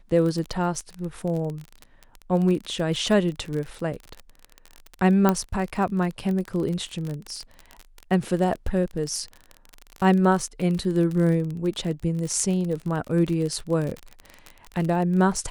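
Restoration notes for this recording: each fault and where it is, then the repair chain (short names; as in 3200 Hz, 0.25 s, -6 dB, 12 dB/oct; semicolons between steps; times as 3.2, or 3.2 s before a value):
crackle 35/s -28 dBFS
5.29 pop -7 dBFS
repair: de-click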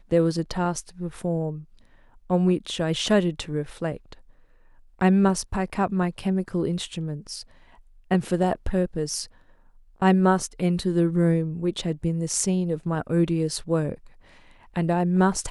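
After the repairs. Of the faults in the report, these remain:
none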